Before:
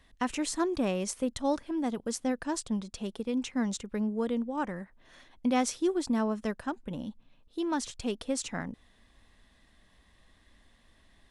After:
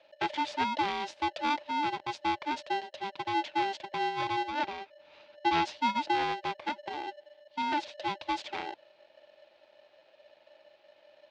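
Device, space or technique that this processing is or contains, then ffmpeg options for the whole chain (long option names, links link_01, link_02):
ring modulator pedal into a guitar cabinet: -filter_complex "[0:a]aeval=exprs='val(0)*sgn(sin(2*PI*590*n/s))':channel_layout=same,highpass=110,equalizer=frequency=140:width_type=q:width=4:gain=-6,equalizer=frequency=320:width_type=q:width=4:gain=4,equalizer=frequency=600:width_type=q:width=4:gain=9,equalizer=frequency=880:width_type=q:width=4:gain=9,equalizer=frequency=1200:width_type=q:width=4:gain=-6,lowpass=frequency=3900:width=0.5412,lowpass=frequency=3900:width=1.3066,asettb=1/sr,asplit=3[link_01][link_02][link_03];[link_01]atrim=end=4.504[link_04];[link_02]atrim=start=4.5:end=5.65,asetpts=PTS-STARTPTS,afade=type=in:duration=0.004:curve=qsin,afade=type=out:start_time=1.146:duration=0.004:curve=qsin,lowpass=frequency=7500:width=0.5412,lowpass=frequency=7500:width=1.3066[link_05];[link_03]atrim=start=5.646[link_06];[link_04][link_05]acrossfade=duration=0.004:curve1=hsin:curve2=qsin[link_07];[link_07][link_06]acrossfade=duration=0.004:curve1=qsin:curve2=hsin,highshelf=frequency=2100:gain=10.5,volume=-6.5dB"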